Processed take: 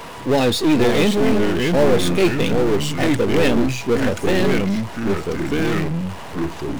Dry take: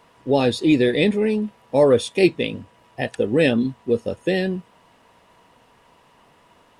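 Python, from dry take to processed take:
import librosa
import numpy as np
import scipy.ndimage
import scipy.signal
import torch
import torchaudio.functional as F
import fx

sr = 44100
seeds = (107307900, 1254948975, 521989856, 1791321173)

y = np.where(x < 0.0, 10.0 ** (-12.0 / 20.0) * x, x)
y = fx.echo_pitch(y, sr, ms=437, semitones=-3, count=3, db_per_echo=-6.0)
y = fx.power_curve(y, sr, exponent=0.5)
y = F.gain(torch.from_numpy(y), -2.0).numpy()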